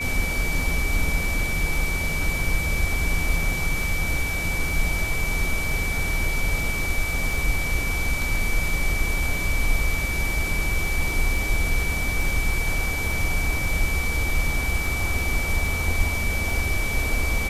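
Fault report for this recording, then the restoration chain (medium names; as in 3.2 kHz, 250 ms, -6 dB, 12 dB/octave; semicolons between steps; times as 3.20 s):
crackle 22 per s -28 dBFS
whine 2.3 kHz -27 dBFS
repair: de-click; band-stop 2.3 kHz, Q 30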